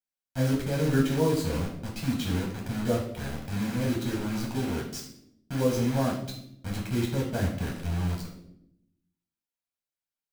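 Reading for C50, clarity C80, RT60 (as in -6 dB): 5.5 dB, 9.5 dB, 0.80 s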